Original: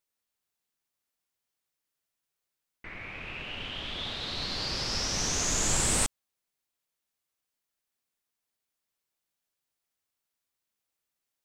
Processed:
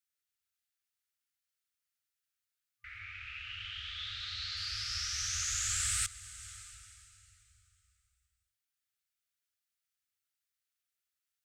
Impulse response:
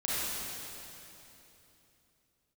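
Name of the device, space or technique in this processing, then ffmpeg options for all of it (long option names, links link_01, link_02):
ducked reverb: -filter_complex "[0:a]asettb=1/sr,asplit=3[link_01][link_02][link_03];[link_01]atrim=end=3.004[link_04];[link_02]atrim=start=3:end=4.57,asetpts=PTS-STARTPTS,afade=type=in:duration=0.004:curve=qsin,afade=type=out:start_time=1.566:duration=0.004:curve=qsin,lowpass=frequency=7600:width=0.5412,lowpass=frequency=7600:width=1.3066[link_05];[link_03]atrim=start=4.566[link_06];[link_04][link_05]acrossfade=duration=0.004:curve1=hsin:curve2=qsin[link_07];[link_07][link_06]acrossfade=duration=0.004:curve1=qsin:curve2=hsin,asplit=3[link_08][link_09][link_10];[1:a]atrim=start_sample=2205[link_11];[link_09][link_11]afir=irnorm=-1:irlink=0[link_12];[link_10]apad=whole_len=504902[link_13];[link_12][link_13]sidechaincompress=threshold=-36dB:ratio=3:attack=9.8:release=447,volume=-14dB[link_14];[link_08][link_14]amix=inputs=2:normalize=0,afftfilt=real='re*(1-between(b*sr/4096,110,1200))':imag='im*(1-between(b*sr/4096,110,1200))':win_size=4096:overlap=0.75,highpass=58,volume=-5.5dB"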